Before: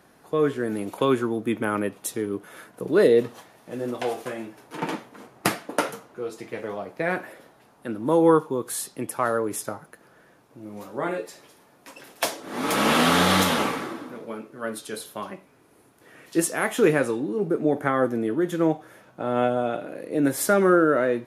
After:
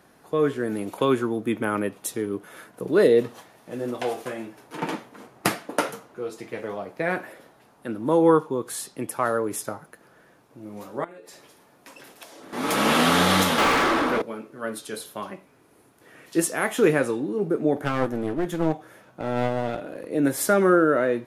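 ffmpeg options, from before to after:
ffmpeg -i in.wav -filter_complex "[0:a]asettb=1/sr,asplit=3[link_01][link_02][link_03];[link_01]atrim=end=8.084[link_04];[link_02]atrim=start=8.08:end=8.98,asetpts=PTS-STARTPTS,afade=type=in:duration=0.004:curve=qsin,afade=type=out:start_time=0.896:duration=0.004:curve=qsin,highshelf=frequency=12000:gain=-8.5[link_05];[link_03]atrim=start=8.976[link_06];[link_04][link_05]acrossfade=duration=0.004:curve1=hsin:curve2=qsin[link_07];[link_07][link_06]acrossfade=duration=0.004:curve1=qsin:curve2=hsin,asettb=1/sr,asplit=3[link_08][link_09][link_10];[link_08]atrim=end=11.044[link_11];[link_09]atrim=start=11.04:end=12.53,asetpts=PTS-STARTPTS,afade=type=in:duration=0.004:curve=qsin,afade=type=out:start_time=1.486:duration=0.004:curve=qsin,acompressor=threshold=-40dB:ratio=16:attack=3.2:release=140:knee=1:detection=peak[link_12];[link_10]atrim=start=12.526[link_13];[link_11][link_12]acrossfade=duration=0.004:curve1=hsin:curve2=qsin[link_14];[link_14][link_13]acrossfade=duration=0.004:curve1=qsin:curve2=hsin,asettb=1/sr,asplit=3[link_15][link_16][link_17];[link_15]atrim=end=13.584[link_18];[link_16]atrim=start=13.58:end=14.22,asetpts=PTS-STARTPTS,afade=type=in:duration=0.004:curve=qsin,afade=type=out:start_time=0.636:duration=0.004:curve=qsin,asplit=2[link_19][link_20];[link_20]highpass=frequency=720:poles=1,volume=31dB,asoftclip=type=tanh:threshold=-12.5dB[link_21];[link_19][link_21]amix=inputs=2:normalize=0,lowpass=frequency=2800:poles=1,volume=-6dB[link_22];[link_17]atrim=start=14.216[link_23];[link_18][link_22]acrossfade=duration=0.004:curve1=hsin:curve2=qsin[link_24];[link_24][link_23]acrossfade=duration=0.004:curve1=qsin:curve2=hsin,asettb=1/sr,asplit=3[link_25][link_26][link_27];[link_25]atrim=end=17.764[link_28];[link_26]atrim=start=17.76:end=20.07,asetpts=PTS-STARTPTS,afade=type=in:duration=0.004:curve=qsin,afade=type=out:start_time=2.306:duration=0.004:curve=qsin,aeval=exprs='clip(val(0),-1,0.0335)':channel_layout=same[link_29];[link_27]atrim=start=20.066[link_30];[link_28][link_29]acrossfade=duration=0.004:curve1=hsin:curve2=qsin[link_31];[link_31][link_30]acrossfade=duration=0.004:curve1=qsin:curve2=hsin" out.wav

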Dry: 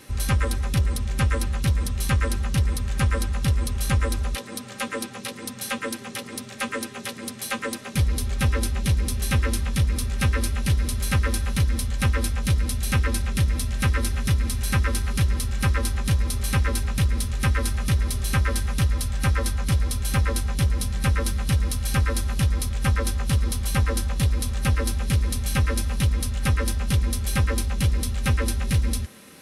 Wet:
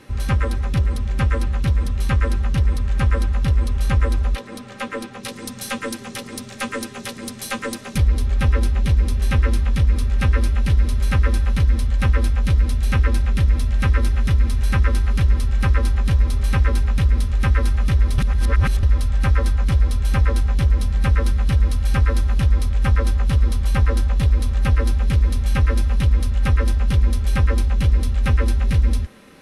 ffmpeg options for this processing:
ffmpeg -i in.wav -filter_complex "[0:a]asettb=1/sr,asplit=3[link_01][link_02][link_03];[link_01]atrim=end=5.234[link_04];[link_02]atrim=start=5.23:end=7.98,asetpts=PTS-STARTPTS,afade=type=in:duration=0.004:curve=qsin,afade=type=out:start_time=2.746:duration=0.004:curve=qsin,bass=frequency=250:gain=3,treble=frequency=4000:gain=10[link_05];[link_03]atrim=start=7.976[link_06];[link_04][link_05]acrossfade=duration=0.004:curve1=hsin:curve2=qsin[link_07];[link_07][link_06]acrossfade=duration=0.004:curve1=qsin:curve2=hsin,asplit=3[link_08][link_09][link_10];[link_08]atrim=end=18.182[link_11];[link_09]atrim=start=18.178:end=18.832,asetpts=PTS-STARTPTS,areverse[link_12];[link_10]atrim=start=18.828[link_13];[link_11][link_12]acrossfade=duration=0.004:curve1=hsin:curve2=hsin[link_14];[link_14][link_13]acrossfade=duration=0.004:curve1=hsin:curve2=hsin,asubboost=boost=2.5:cutoff=62,lowpass=frequency=2200:poles=1,volume=3dB" out.wav

